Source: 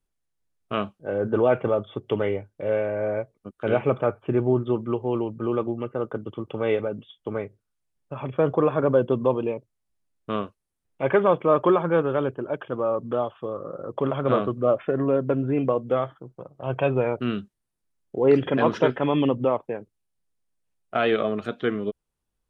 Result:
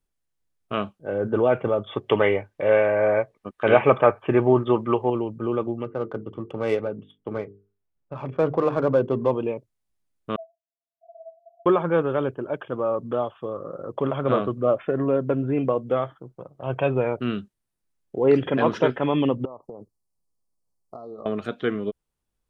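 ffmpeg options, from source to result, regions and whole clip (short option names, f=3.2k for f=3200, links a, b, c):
-filter_complex "[0:a]asettb=1/sr,asplit=3[a][b][c];[a]atrim=end=1.864[d];[b]atrim=start=1.86:end=5.1,asetpts=PTS-STARTPTS,afade=t=in:d=0.004:c=qsin,afade=t=out:st=3.236:d=0.004:c=qsin,equalizer=f=1.5k:t=o:w=2.8:g=12.5,bandreject=f=1.4k:w=5.8[e];[c]atrim=start=5.096[f];[d][e]acrossfade=d=0.004:c1=hsin:c2=qsin[g];[g][f]acrossfade=d=0.004:c1=qsin:c2=hsin,asettb=1/sr,asplit=3[h][i][j];[h]atrim=end=5.844[k];[i]atrim=start=5.84:end=9.31,asetpts=PTS-STARTPTS,afade=t=in:d=0.004:c=qsin,afade=t=out:st=3.466:d=0.004:c=qsin,bandreject=f=50:t=h:w=6,bandreject=f=100:t=h:w=6,bandreject=f=150:t=h:w=6,bandreject=f=200:t=h:w=6,bandreject=f=250:t=h:w=6,bandreject=f=300:t=h:w=6,bandreject=f=350:t=h:w=6,bandreject=f=400:t=h:w=6,bandreject=f=450:t=h:w=6,adynamicsmooth=sensitivity=4:basefreq=2k[l];[j]atrim=start=9.306[m];[k][l]acrossfade=d=0.004:c1=hsin:c2=qsin[n];[n][m]acrossfade=d=0.004:c1=qsin:c2=hsin,asettb=1/sr,asplit=3[o][p][q];[o]atrim=end=10.364[r];[p]atrim=start=10.36:end=11.66,asetpts=PTS-STARTPTS,afade=t=in:d=0.004:c=qsin,afade=t=out:st=1.296:d=0.004:c=qsin,asuperpass=centerf=230:order=8:qfactor=6.5,afreqshift=440[s];[q]atrim=start=11.656[t];[r][s]acrossfade=d=0.004:c1=hsin:c2=qsin[u];[u][t]acrossfade=d=0.004:c1=qsin:c2=hsin,asettb=1/sr,asplit=3[v][w][x];[v]atrim=end=19.454[y];[w]atrim=start=19.45:end=21.26,asetpts=PTS-STARTPTS,afade=t=in:d=0.004:c=qsin,afade=t=out:st=1.806:d=0.004:c=qsin,acompressor=threshold=-33dB:ratio=20:attack=3.2:release=140:knee=1:detection=peak,asuperstop=centerf=2300:order=20:qfactor=0.78[z];[x]atrim=start=21.256[aa];[y][z]acrossfade=d=0.004:c1=hsin:c2=qsin[ab];[ab][aa]acrossfade=d=0.004:c1=qsin:c2=hsin"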